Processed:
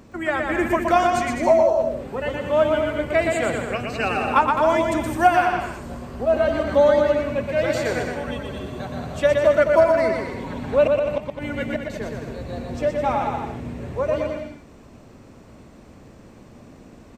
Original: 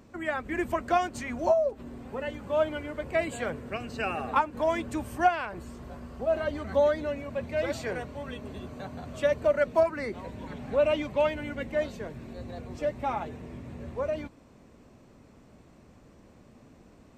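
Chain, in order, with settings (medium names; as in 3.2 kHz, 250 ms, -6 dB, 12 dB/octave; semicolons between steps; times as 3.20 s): 10.87–11.90 s: inverted gate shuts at -21 dBFS, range -28 dB; bouncing-ball echo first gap 120 ms, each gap 0.75×, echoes 5; trim +7 dB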